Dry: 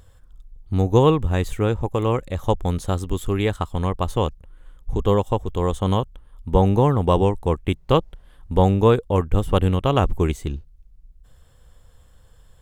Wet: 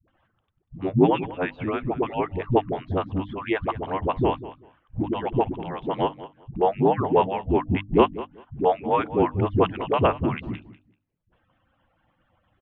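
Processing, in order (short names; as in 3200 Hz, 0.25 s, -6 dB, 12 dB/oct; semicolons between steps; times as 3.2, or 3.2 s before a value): median-filter separation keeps percussive; feedback echo 0.193 s, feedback 18%, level -16 dB; mistuned SSB -98 Hz 170–2900 Hz; bell 100 Hz +5 dB 0.55 oct; notches 50/100/150/200/250/300 Hz; dispersion highs, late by 82 ms, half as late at 300 Hz; gain +2 dB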